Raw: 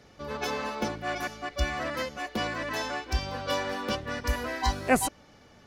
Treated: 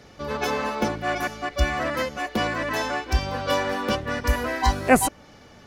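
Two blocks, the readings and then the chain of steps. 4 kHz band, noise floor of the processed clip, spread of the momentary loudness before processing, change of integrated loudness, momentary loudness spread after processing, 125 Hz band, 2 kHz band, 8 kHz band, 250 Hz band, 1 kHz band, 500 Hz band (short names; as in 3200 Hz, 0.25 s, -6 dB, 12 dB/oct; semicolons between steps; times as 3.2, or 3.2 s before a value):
+3.5 dB, -49 dBFS, 7 LU, +6.0 dB, 8 LU, +6.5 dB, +5.5 dB, +5.0 dB, +6.5 dB, +6.5 dB, +6.5 dB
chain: dynamic EQ 4500 Hz, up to -4 dB, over -45 dBFS, Q 0.95; gain +6.5 dB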